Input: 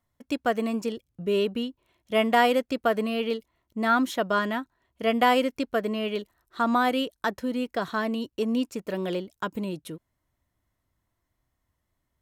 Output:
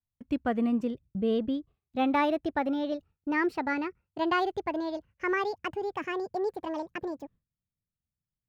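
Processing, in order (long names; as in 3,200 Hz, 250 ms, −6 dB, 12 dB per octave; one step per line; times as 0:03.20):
gliding playback speed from 97% → 191%
noise gate with hold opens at −49 dBFS
bass and treble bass +15 dB, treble −15 dB
level −6 dB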